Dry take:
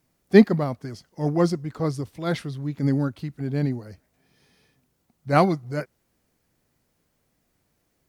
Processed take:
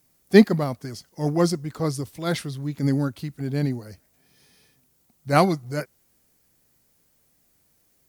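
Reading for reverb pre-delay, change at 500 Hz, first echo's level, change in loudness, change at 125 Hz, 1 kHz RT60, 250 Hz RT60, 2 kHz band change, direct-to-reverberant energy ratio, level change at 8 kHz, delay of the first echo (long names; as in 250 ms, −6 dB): no reverb audible, 0.0 dB, no echo audible, 0.0 dB, 0.0 dB, no reverb audible, no reverb audible, +1.5 dB, no reverb audible, +8.5 dB, no echo audible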